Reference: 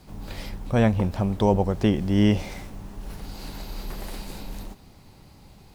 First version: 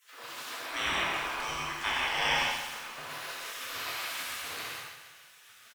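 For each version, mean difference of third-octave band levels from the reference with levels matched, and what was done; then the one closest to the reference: 14.5 dB: spectral gate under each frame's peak -30 dB weak; tone controls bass +4 dB, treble -10 dB; on a send: feedback delay 132 ms, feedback 51%, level -8.5 dB; on the sum: gated-style reverb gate 230 ms flat, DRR -6 dB; trim +8 dB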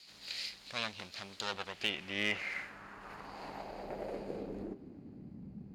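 9.5 dB: comb filter that takes the minimum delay 0.42 ms; in parallel at -1 dB: compression, threshold -30 dBFS, peak gain reduction 13.5 dB; on the sum: band-pass sweep 4.1 kHz -> 210 Hz, 1.42–5.42 s; hard clipper -24 dBFS, distortion -24 dB; trim +3.5 dB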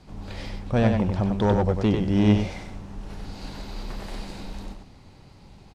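3.5 dB: treble shelf 7.3 kHz +6 dB; hard clipper -15 dBFS, distortion -16 dB; distance through air 88 m; delay 96 ms -5 dB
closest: third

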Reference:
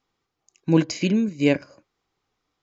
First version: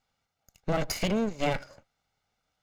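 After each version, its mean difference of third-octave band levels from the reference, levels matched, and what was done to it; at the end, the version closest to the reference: 9.5 dB: comb filter that takes the minimum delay 1.4 ms; peak limiter -17.5 dBFS, peak gain reduction 6 dB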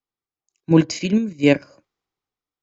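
2.5 dB: in parallel at +1 dB: level held to a coarse grid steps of 19 dB; on the sum: three bands expanded up and down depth 40%; trim -2 dB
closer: second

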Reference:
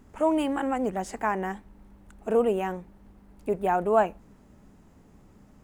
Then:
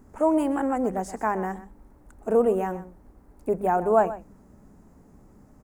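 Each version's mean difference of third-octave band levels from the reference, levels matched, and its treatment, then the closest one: 2.5 dB: peaking EQ 3.1 kHz -12.5 dB 1.2 oct; hum notches 50/100/150/200 Hz; on a send: delay 126 ms -15 dB; on the sum: trim +2.5 dB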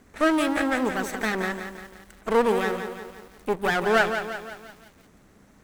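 9.5 dB: comb filter that takes the minimum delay 0.51 ms; bass shelf 320 Hz -10.5 dB; bit-crushed delay 173 ms, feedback 55%, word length 9-bit, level -8 dB; trim +6.5 dB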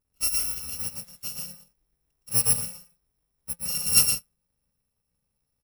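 14.0 dB: bit-reversed sample order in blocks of 128 samples; on a send: loudspeakers at several distances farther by 40 m -3 dB, 56 m -7 dB; on the sum: upward expansion 2.5:1, over -36 dBFS; trim +3 dB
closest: first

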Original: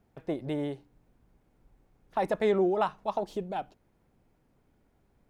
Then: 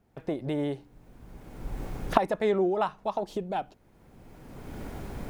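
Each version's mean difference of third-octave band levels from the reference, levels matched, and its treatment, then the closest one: 1.5 dB: recorder AGC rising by 23 dB/s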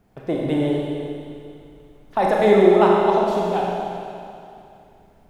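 6.5 dB: Schroeder reverb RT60 2.6 s, combs from 30 ms, DRR -3 dB; trim +7.5 dB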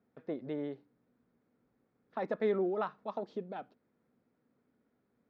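3.0 dB: cabinet simulation 140–4700 Hz, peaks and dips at 240 Hz +9 dB, 470 Hz +6 dB, 840 Hz -3 dB, 1.3 kHz +5 dB, 1.8 kHz +3 dB, 2.9 kHz -5 dB; trim -8.5 dB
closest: first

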